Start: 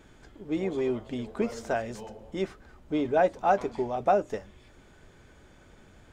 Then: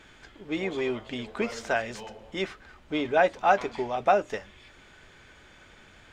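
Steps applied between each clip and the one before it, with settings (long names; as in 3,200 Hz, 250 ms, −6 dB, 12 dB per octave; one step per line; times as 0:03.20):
parametric band 2,600 Hz +12.5 dB 2.9 octaves
level −3 dB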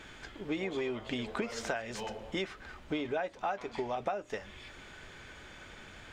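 downward compressor 12 to 1, threshold −34 dBFS, peak gain reduction 19 dB
level +3 dB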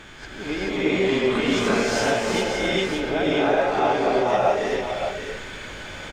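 peak hold with a rise ahead of every peak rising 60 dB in 0.35 s
single-tap delay 570 ms −7.5 dB
reverb whose tail is shaped and stops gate 460 ms rising, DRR −7 dB
level +5 dB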